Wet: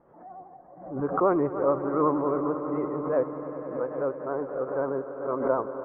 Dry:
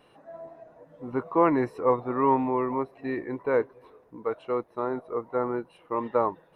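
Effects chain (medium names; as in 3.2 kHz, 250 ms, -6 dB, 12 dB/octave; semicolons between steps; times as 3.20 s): vibrato 10 Hz 72 cents; tape speed +12%; Bessel low-pass 950 Hz, order 6; echo with a slow build-up 98 ms, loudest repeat 5, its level -16 dB; swell ahead of each attack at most 87 dB/s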